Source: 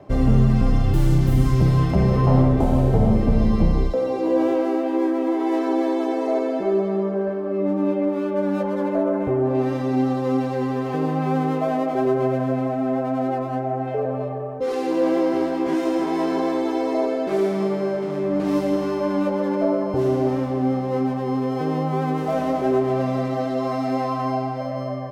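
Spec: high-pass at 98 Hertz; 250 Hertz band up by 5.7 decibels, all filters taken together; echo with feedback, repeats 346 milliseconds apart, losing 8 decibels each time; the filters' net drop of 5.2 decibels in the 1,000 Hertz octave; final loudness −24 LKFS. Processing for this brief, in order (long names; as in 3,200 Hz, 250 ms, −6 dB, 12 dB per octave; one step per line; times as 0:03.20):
high-pass filter 98 Hz
parametric band 250 Hz +7.5 dB
parametric band 1,000 Hz −8 dB
repeating echo 346 ms, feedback 40%, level −8 dB
level −6 dB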